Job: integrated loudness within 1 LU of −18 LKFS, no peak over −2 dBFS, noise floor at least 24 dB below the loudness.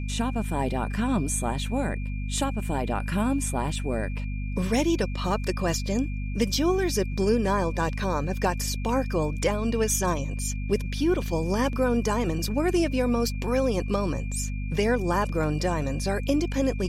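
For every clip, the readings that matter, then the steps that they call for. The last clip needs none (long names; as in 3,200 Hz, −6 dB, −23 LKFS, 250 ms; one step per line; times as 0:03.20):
mains hum 50 Hz; hum harmonics up to 250 Hz; level of the hum −28 dBFS; interfering tone 2,400 Hz; level of the tone −44 dBFS; integrated loudness −26.5 LKFS; sample peak −10.0 dBFS; target loudness −18.0 LKFS
→ hum removal 50 Hz, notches 5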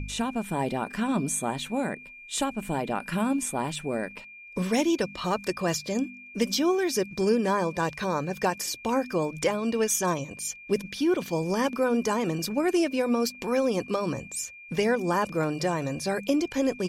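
mains hum none found; interfering tone 2,400 Hz; level of the tone −44 dBFS
→ notch filter 2,400 Hz, Q 30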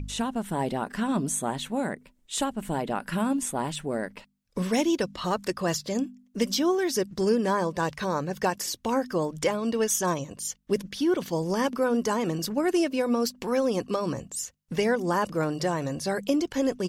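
interfering tone none found; integrated loudness −27.5 LKFS; sample peak −12.0 dBFS; target loudness −18.0 LKFS
→ level +9.5 dB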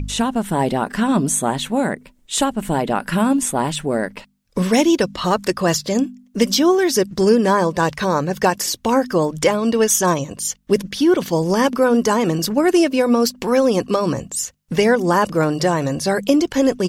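integrated loudness −18.0 LKFS; sample peak −2.5 dBFS; background noise floor −53 dBFS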